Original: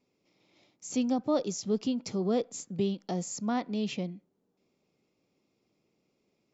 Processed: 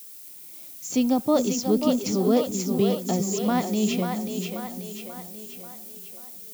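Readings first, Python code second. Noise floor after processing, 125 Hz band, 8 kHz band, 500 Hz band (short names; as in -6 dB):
-44 dBFS, +8.0 dB, n/a, +8.0 dB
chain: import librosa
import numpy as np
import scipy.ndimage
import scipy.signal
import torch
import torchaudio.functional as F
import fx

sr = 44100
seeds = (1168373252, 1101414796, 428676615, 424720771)

y = fx.dmg_noise_colour(x, sr, seeds[0], colour='violet', level_db=-50.0)
y = fx.echo_split(y, sr, split_hz=330.0, low_ms=397, high_ms=537, feedback_pct=52, wet_db=-5)
y = y * librosa.db_to_amplitude(6.5)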